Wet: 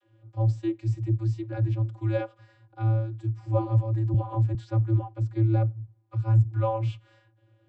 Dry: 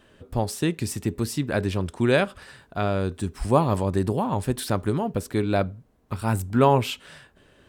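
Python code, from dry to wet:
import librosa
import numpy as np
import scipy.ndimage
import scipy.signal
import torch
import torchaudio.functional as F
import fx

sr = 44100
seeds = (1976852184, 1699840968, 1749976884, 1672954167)

y = fx.vocoder(x, sr, bands=32, carrier='square', carrier_hz=111.0)
y = fx.band_squash(y, sr, depth_pct=100, at=(4.14, 4.55))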